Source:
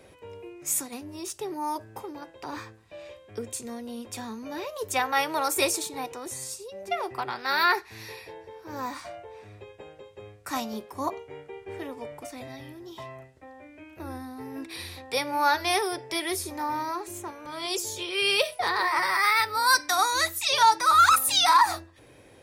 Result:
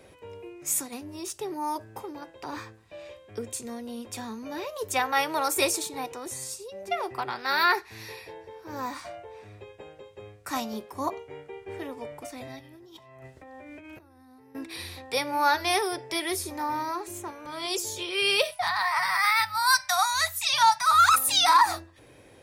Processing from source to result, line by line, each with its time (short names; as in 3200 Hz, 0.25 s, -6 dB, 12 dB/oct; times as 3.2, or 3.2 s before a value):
12.59–14.55 negative-ratio compressor -50 dBFS
18.51–21.14 elliptic band-stop 200–670 Hz